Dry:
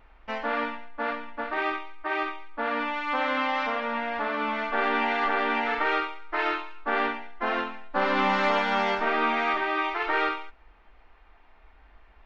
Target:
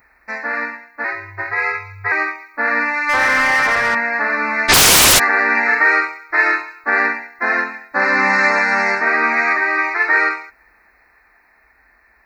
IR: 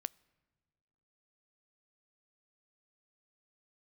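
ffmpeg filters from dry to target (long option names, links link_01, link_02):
-filter_complex "[0:a]equalizer=frequency=1800:width_type=o:width=0.47:gain=13,asettb=1/sr,asplit=3[link_01][link_02][link_03];[link_01]atrim=end=1.044[link_04];[link_02]atrim=start=1.04:end=2.12,asetpts=PTS-STARTPTS,afade=type=in:duration=0.004:curve=qsin,afade=type=out:start_time=1.076:duration=0.004:curve=qsin,afreqshift=98[link_05];[link_03]atrim=start=2.116[link_06];[link_04][link_05]acrossfade=duration=0.004:curve1=hsin:curve2=qsin[link_07];[link_07][link_06]acrossfade=duration=0.004:curve1=qsin:curve2=hsin,asuperstop=centerf=3200:order=12:qfactor=2.4,crystalizer=i=1:c=0,highpass=75,aemphasis=mode=production:type=50kf,asettb=1/sr,asplit=3[link_08][link_09][link_10];[link_08]atrim=end=3.094[link_11];[link_09]atrim=start=3.09:end=3.95,asetpts=PTS-STARTPTS,afade=type=in:duration=0.004:curve=qsin,afade=type=out:start_time=0.856:duration=0.004:curve=qsin,asplit=2[link_12][link_13];[link_13]highpass=frequency=720:poles=1,volume=17dB,asoftclip=type=tanh:threshold=-15dB[link_14];[link_12][link_14]amix=inputs=2:normalize=0,lowpass=frequency=3000:poles=1,volume=-6dB[link_15];[link_10]atrim=start=3.946[link_16];[link_11][link_15]acrossfade=duration=0.004:curve1=hsin:curve2=qsin[link_17];[link_17][link_16]acrossfade=duration=0.004:curve1=qsin:curve2=hsin,asplit=3[link_18][link_19][link_20];[link_18]afade=type=out:start_time=4.68:duration=0.02[link_21];[link_19]aeval=exprs='0.266*sin(PI/2*7.08*val(0)/0.266)':channel_layout=same,afade=type=in:start_time=4.68:duration=0.02,afade=type=out:start_time=5.18:duration=0.02[link_22];[link_20]afade=type=in:start_time=5.18:duration=0.02[link_23];[link_21][link_22][link_23]amix=inputs=3:normalize=0,dynaudnorm=framelen=310:gausssize=13:maxgain=7.5dB"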